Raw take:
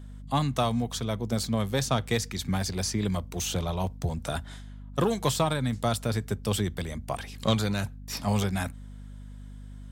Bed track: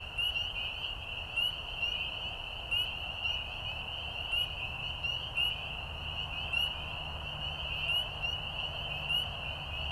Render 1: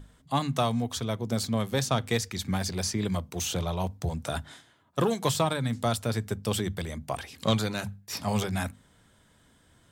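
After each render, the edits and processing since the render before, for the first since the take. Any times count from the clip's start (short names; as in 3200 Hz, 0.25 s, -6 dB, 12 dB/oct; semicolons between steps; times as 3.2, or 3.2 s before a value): notches 50/100/150/200/250 Hz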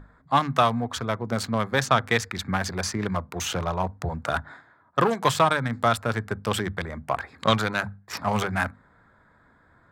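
Wiener smoothing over 15 samples; bell 1500 Hz +13 dB 2 oct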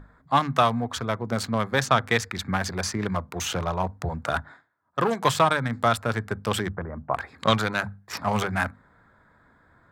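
4.39–5.12 dip -19 dB, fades 0.30 s; 6.69–7.14 LPF 1400 Hz 24 dB/oct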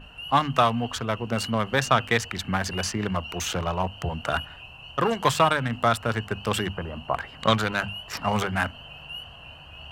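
add bed track -6 dB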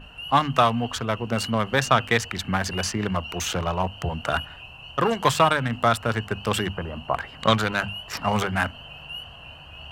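gain +1.5 dB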